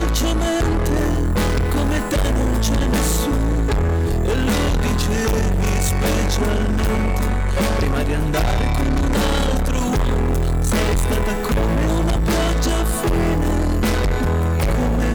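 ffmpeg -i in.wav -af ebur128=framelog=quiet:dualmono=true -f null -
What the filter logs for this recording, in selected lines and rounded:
Integrated loudness:
  I:         -16.6 LUFS
  Threshold: -26.6 LUFS
Loudness range:
  LRA:         0.5 LU
  Threshold: -36.6 LUFS
  LRA low:   -16.9 LUFS
  LRA high:  -16.3 LUFS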